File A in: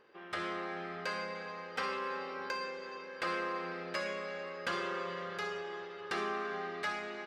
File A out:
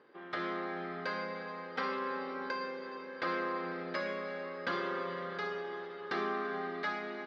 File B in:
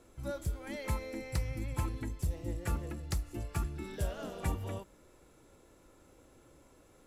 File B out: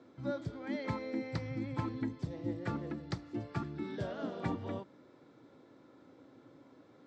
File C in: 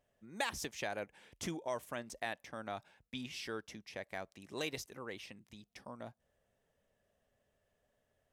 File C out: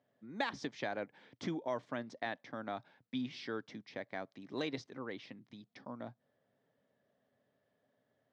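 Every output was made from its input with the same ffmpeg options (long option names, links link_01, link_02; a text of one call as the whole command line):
ffmpeg -i in.wav -af "highpass=frequency=120:width=0.5412,highpass=frequency=120:width=1.3066,equalizer=frequency=120:width_type=q:width=4:gain=4,equalizer=frequency=270:width_type=q:width=4:gain=8,equalizer=frequency=2700:width_type=q:width=4:gain=-8,lowpass=frequency=4500:width=0.5412,lowpass=frequency=4500:width=1.3066,volume=1dB" out.wav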